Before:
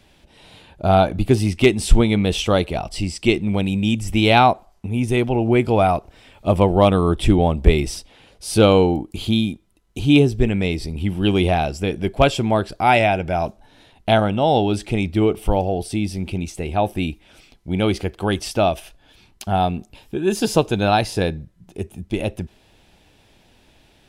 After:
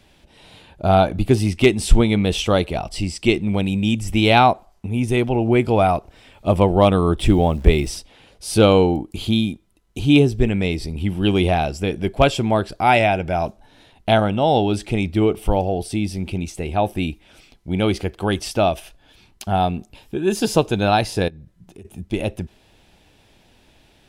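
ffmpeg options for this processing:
ffmpeg -i in.wav -filter_complex "[0:a]asettb=1/sr,asplit=3[link_01][link_02][link_03];[link_01]atrim=end=7.184[link_04];[link_02]atrim=start=7.18:end=7.88,asetpts=PTS-STARTPTS,afade=type=in:duration=0.004:curve=qsin,afade=type=out:start_time=0.696:duration=0.004:curve=qsin,acrusher=bits=9:dc=4:mix=0:aa=0.000001[link_05];[link_03]atrim=start=7.876[link_06];[link_04][link_05]acrossfade=duration=0.004:curve1=hsin:curve2=qsin[link_07];[link_07][link_06]acrossfade=duration=0.004:curve1=qsin:curve2=hsin,asettb=1/sr,asplit=3[link_08][link_09][link_10];[link_08]atrim=end=21.284[link_11];[link_09]atrim=start=21.28:end=21.85,asetpts=PTS-STARTPTS,afade=type=in:duration=0.004:curve=qsin,afade=type=out:start_time=0.566:duration=0.004:curve=qsin,acompressor=threshold=-38dB:ratio=5:attack=3.2:release=140:knee=1:detection=peak[link_12];[link_10]atrim=start=21.846[link_13];[link_11][link_12]acrossfade=duration=0.004:curve1=hsin:curve2=qsin[link_14];[link_14][link_13]acrossfade=duration=0.004:curve1=qsin:curve2=hsin" out.wav

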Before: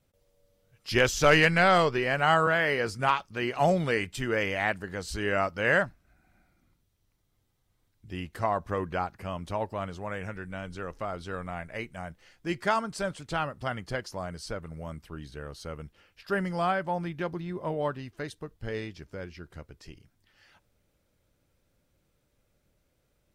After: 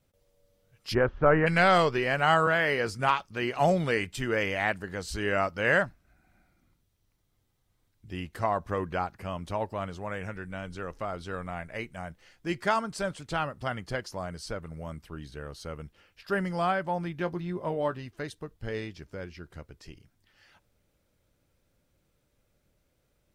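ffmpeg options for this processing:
ffmpeg -i in.wav -filter_complex "[0:a]asplit=3[link_01][link_02][link_03];[link_01]afade=type=out:start_time=0.93:duration=0.02[link_04];[link_02]lowpass=frequency=1500:width=0.5412,lowpass=frequency=1500:width=1.3066,afade=type=in:start_time=0.93:duration=0.02,afade=type=out:start_time=1.46:duration=0.02[link_05];[link_03]afade=type=in:start_time=1.46:duration=0.02[link_06];[link_04][link_05][link_06]amix=inputs=3:normalize=0,asettb=1/sr,asplit=3[link_07][link_08][link_09];[link_07]atrim=end=17.194[link_10];[link_08]atrim=start=17.19:end=18.06,asetpts=PTS-STARTPTS,afade=type=in:duration=0.004:curve=qsin,afade=type=out:start_time=0.866:duration=0.004:curve=qsin,asplit=2[link_11][link_12];[link_12]adelay=17,volume=-11dB[link_13];[link_11][link_13]amix=inputs=2:normalize=0,atrim=end_sample=38367[link_14];[link_09]atrim=start=18.056[link_15];[link_10][link_14]acrossfade=duration=0.004:curve1=hsin:curve2=qsin[link_16];[link_16][link_15]acrossfade=duration=0.004:curve1=qsin:curve2=hsin" out.wav

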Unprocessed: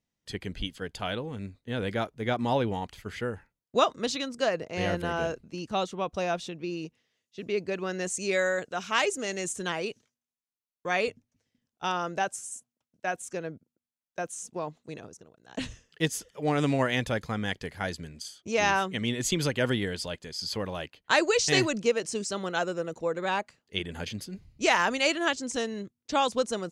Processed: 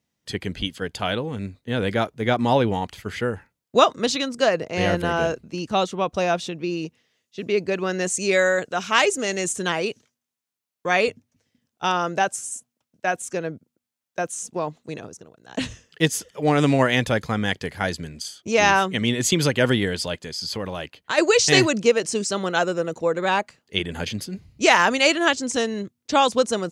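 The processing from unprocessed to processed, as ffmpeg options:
ffmpeg -i in.wav -filter_complex "[0:a]asplit=3[link_01][link_02][link_03];[link_01]afade=type=out:start_time=20.18:duration=0.02[link_04];[link_02]acompressor=threshold=-35dB:ratio=2:attack=3.2:release=140:knee=1:detection=peak,afade=type=in:start_time=20.18:duration=0.02,afade=type=out:start_time=21.17:duration=0.02[link_05];[link_03]afade=type=in:start_time=21.17:duration=0.02[link_06];[link_04][link_05][link_06]amix=inputs=3:normalize=0,highpass=64,volume=7.5dB" out.wav

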